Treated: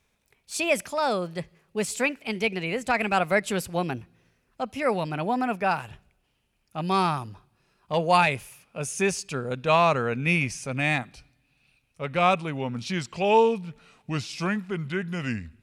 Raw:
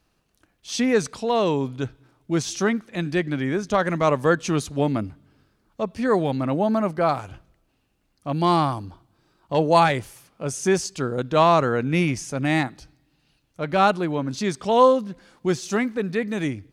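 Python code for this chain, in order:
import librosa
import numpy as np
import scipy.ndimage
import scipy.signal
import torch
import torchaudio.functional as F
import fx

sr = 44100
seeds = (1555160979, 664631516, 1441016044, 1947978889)

y = fx.speed_glide(x, sr, from_pct=134, to_pct=80)
y = fx.graphic_eq_31(y, sr, hz=(315, 2500, 10000), db=(-9, 11, 6))
y = y * 10.0 ** (-3.5 / 20.0)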